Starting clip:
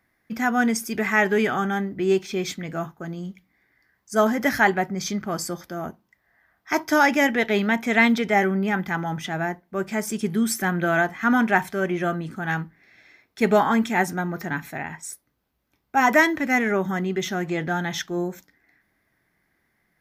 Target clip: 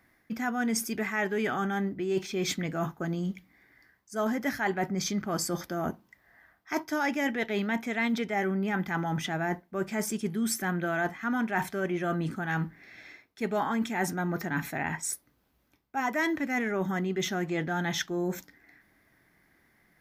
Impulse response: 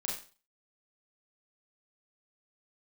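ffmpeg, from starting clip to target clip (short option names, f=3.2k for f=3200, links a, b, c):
-af "equalizer=f=290:t=o:w=0.4:g=2.5,areverse,acompressor=threshold=-32dB:ratio=5,areverse,volume=4dB"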